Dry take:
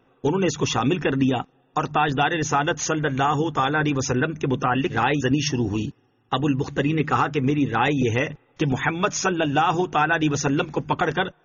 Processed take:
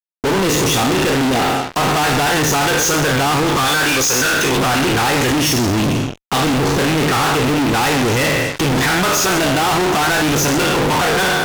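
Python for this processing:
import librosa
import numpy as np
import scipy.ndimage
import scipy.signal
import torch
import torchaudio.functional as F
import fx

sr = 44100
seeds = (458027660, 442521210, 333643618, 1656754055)

y = fx.spec_trails(x, sr, decay_s=0.66)
y = fx.tilt_eq(y, sr, slope=3.5, at=(3.68, 4.57))
y = fx.fuzz(y, sr, gain_db=45.0, gate_db=-45.0)
y = F.gain(torch.from_numpy(y), -1.5).numpy()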